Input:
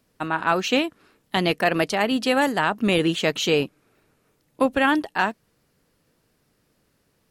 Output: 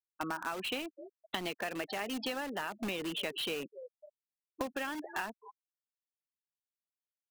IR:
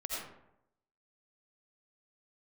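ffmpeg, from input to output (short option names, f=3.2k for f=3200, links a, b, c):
-filter_complex "[0:a]acrossover=split=170 4800:gain=0.158 1 0.0794[a][b][c];[a][b][c]amix=inputs=3:normalize=0,asplit=2[d][e];[e]asplit=4[f][g][h][i];[f]adelay=254,afreqshift=71,volume=-22dB[j];[g]adelay=508,afreqshift=142,volume=-27.8dB[k];[h]adelay=762,afreqshift=213,volume=-33.7dB[l];[i]adelay=1016,afreqshift=284,volume=-39.5dB[m];[j][k][l][m]amix=inputs=4:normalize=0[n];[d][n]amix=inputs=2:normalize=0,afftfilt=real='re*gte(hypot(re,im),0.0501)':imag='im*gte(hypot(re,im),0.0501)':win_size=1024:overlap=0.75,crystalizer=i=3:c=0,asplit=2[o][p];[p]aeval=exprs='(mod(10*val(0)+1,2)-1)/10':c=same,volume=-5.5dB[q];[o][q]amix=inputs=2:normalize=0,acompressor=threshold=-28dB:ratio=10,volume=-5.5dB"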